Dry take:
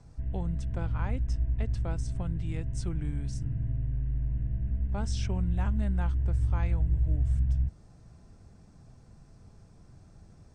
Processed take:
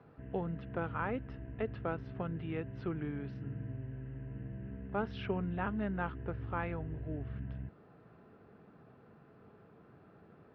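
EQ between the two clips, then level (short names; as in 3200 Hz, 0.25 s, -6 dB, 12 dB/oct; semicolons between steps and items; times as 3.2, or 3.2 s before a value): air absorption 420 m; speaker cabinet 230–4500 Hz, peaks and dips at 430 Hz +7 dB, 1300 Hz +7 dB, 2800 Hz +5 dB; bell 1700 Hz +4 dB 0.29 oct; +3.0 dB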